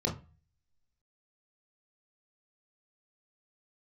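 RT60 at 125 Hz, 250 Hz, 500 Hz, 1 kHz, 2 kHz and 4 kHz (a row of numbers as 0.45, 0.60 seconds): 0.60, 0.40, 0.30, 0.35, 0.30, 0.25 seconds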